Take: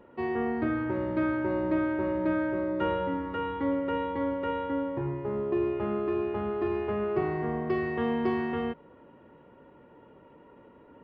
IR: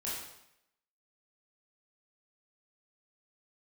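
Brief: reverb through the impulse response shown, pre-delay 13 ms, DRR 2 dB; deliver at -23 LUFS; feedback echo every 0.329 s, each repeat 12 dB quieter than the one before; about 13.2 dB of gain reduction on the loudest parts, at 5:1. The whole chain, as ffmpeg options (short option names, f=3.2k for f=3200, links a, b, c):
-filter_complex "[0:a]acompressor=threshold=-39dB:ratio=5,aecho=1:1:329|658|987:0.251|0.0628|0.0157,asplit=2[a][b];[1:a]atrim=start_sample=2205,adelay=13[c];[b][c]afir=irnorm=-1:irlink=0,volume=-4.5dB[d];[a][d]amix=inputs=2:normalize=0,volume=17dB"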